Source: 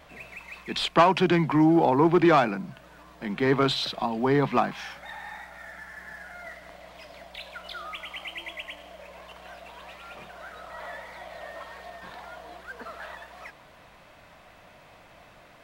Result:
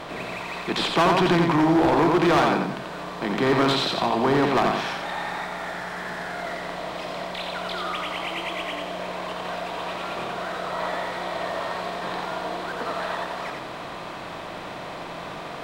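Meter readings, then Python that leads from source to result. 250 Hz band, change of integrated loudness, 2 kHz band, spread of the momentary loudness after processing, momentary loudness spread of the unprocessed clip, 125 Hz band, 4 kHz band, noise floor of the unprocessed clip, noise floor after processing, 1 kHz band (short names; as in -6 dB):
+1.5 dB, -1.5 dB, +5.5 dB, 16 LU, 22 LU, +1.5 dB, +5.0 dB, -53 dBFS, -36 dBFS, +4.0 dB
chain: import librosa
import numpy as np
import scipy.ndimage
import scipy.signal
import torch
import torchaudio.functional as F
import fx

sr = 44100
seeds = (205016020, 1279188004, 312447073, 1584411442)

y = fx.bin_compress(x, sr, power=0.6)
y = fx.echo_feedback(y, sr, ms=88, feedback_pct=34, wet_db=-4.0)
y = np.clip(10.0 ** (13.5 / 20.0) * y, -1.0, 1.0) / 10.0 ** (13.5 / 20.0)
y = y * 10.0 ** (-1.0 / 20.0)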